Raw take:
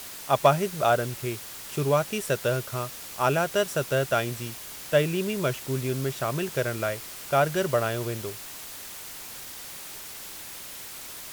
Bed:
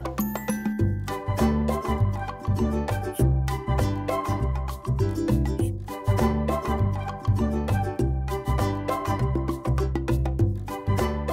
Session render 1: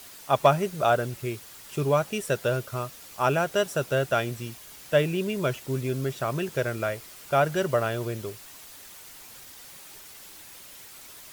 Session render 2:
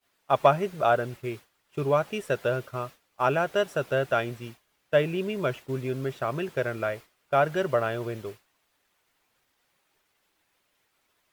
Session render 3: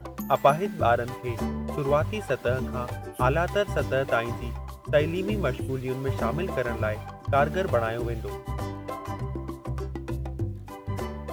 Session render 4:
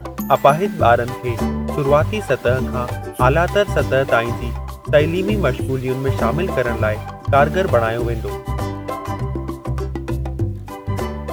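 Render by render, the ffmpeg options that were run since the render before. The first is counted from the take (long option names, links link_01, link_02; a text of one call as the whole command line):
ffmpeg -i in.wav -af "afftdn=noise_reduction=7:noise_floor=-41" out.wav
ffmpeg -i in.wav -af "agate=range=-33dB:threshold=-33dB:ratio=3:detection=peak,bass=frequency=250:gain=-4,treble=frequency=4000:gain=-11" out.wav
ffmpeg -i in.wav -i bed.wav -filter_complex "[1:a]volume=-8dB[link_01];[0:a][link_01]amix=inputs=2:normalize=0" out.wav
ffmpeg -i in.wav -af "volume=9dB,alimiter=limit=-1dB:level=0:latency=1" out.wav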